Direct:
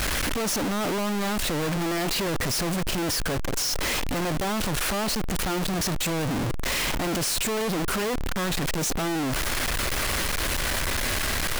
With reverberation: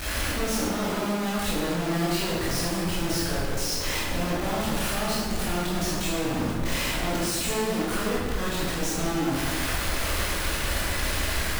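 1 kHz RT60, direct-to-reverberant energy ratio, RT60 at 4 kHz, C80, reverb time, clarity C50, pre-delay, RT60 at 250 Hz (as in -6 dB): 1.4 s, -7.5 dB, 1.1 s, 1.0 dB, 1.5 s, -1.5 dB, 13 ms, 1.8 s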